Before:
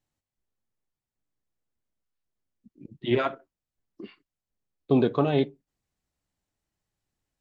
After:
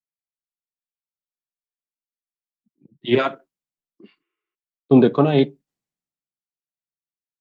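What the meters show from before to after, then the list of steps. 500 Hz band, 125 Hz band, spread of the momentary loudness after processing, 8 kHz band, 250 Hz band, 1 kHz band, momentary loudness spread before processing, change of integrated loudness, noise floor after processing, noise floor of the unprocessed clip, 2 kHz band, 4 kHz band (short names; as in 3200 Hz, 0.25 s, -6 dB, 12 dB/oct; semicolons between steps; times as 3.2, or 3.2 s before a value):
+7.0 dB, +6.5 dB, 11 LU, n/a, +8.5 dB, +5.5 dB, 9 LU, +7.5 dB, under -85 dBFS, under -85 dBFS, +6.5 dB, +7.0 dB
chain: spectral repair 4.23–4.52, 340–3800 Hz before; resonant low shelf 110 Hz -11 dB, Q 1.5; three-band expander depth 70%; gain +4 dB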